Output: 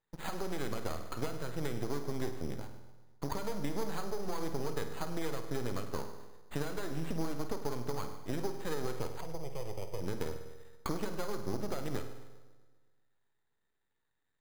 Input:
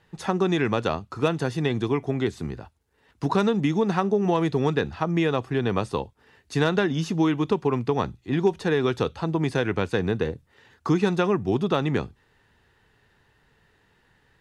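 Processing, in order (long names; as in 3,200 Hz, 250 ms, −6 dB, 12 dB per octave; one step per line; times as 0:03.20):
stylus tracing distortion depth 0.26 ms
noise gate −53 dBFS, range −19 dB
low-shelf EQ 240 Hz −6 dB
downward compressor 6 to 1, threshold −30 dBFS, peak gain reduction 12.5 dB
half-wave rectification
0:09.21–0:10.01: phaser with its sweep stopped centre 630 Hz, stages 4
bucket-brigade delay 130 ms, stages 2,048, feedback 59%, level −19 dB
convolution reverb RT60 1.1 s, pre-delay 49 ms, DRR 7 dB
bad sample-rate conversion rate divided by 8×, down filtered, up hold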